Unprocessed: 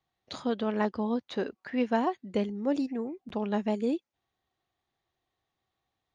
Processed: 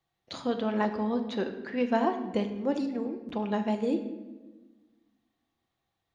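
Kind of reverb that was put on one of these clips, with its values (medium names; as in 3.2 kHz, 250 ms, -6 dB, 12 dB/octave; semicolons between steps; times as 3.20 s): simulated room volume 820 m³, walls mixed, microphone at 0.77 m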